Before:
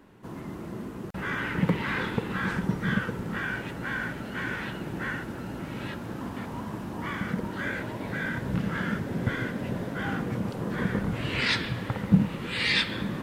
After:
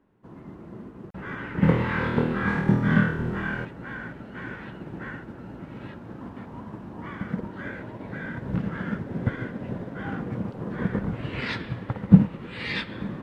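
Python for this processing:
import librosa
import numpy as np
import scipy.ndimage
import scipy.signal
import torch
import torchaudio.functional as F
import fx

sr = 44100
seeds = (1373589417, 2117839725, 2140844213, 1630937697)

y = fx.lowpass(x, sr, hz=1400.0, slope=6)
y = fx.room_flutter(y, sr, wall_m=4.3, rt60_s=0.72, at=(1.62, 3.64), fade=0.02)
y = fx.upward_expand(y, sr, threshold_db=-50.0, expansion=1.5)
y = y * 10.0 ** (7.5 / 20.0)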